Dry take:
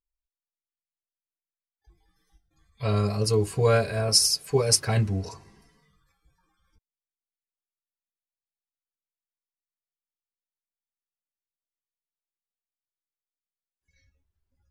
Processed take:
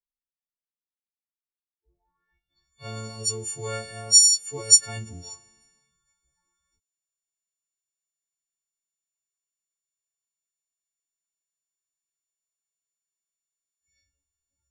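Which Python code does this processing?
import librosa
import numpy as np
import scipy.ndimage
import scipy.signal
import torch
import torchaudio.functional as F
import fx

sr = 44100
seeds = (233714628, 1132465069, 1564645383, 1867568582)

y = fx.freq_snap(x, sr, grid_st=4)
y = fx.filter_sweep_lowpass(y, sr, from_hz=240.0, to_hz=7300.0, start_s=1.69, end_s=2.74, q=6.9)
y = y * 10.0 ** (-12.5 / 20.0)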